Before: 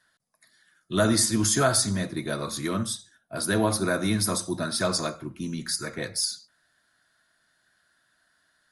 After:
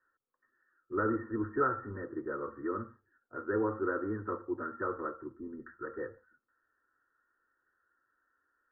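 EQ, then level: rippled Chebyshev low-pass 1.9 kHz, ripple 9 dB; static phaser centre 650 Hz, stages 6; 0.0 dB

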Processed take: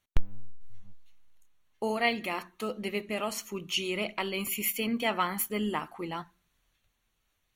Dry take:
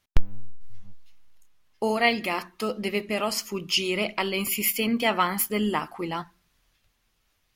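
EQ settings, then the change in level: Butterworth band-stop 5 kHz, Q 5.9; -5.5 dB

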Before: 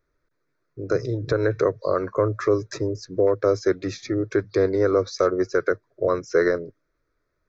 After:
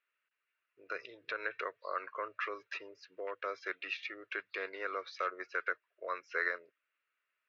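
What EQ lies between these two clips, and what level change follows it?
high-pass 1.2 kHz 12 dB/octave; four-pole ladder low-pass 2.9 kHz, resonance 90%; +6.5 dB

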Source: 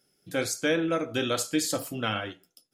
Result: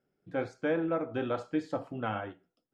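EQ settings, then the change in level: low-pass 1.5 kHz 12 dB/octave; dynamic bell 850 Hz, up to +7 dB, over -49 dBFS, Q 2.6; -4.0 dB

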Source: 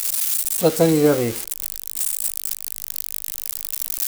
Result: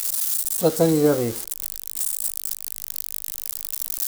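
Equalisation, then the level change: dynamic bell 2.4 kHz, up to -7 dB, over -44 dBFS, Q 1.6; -2.0 dB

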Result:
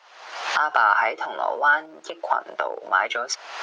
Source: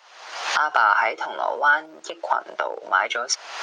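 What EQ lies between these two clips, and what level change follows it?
low-pass 4 kHz 6 dB/octave; 0.0 dB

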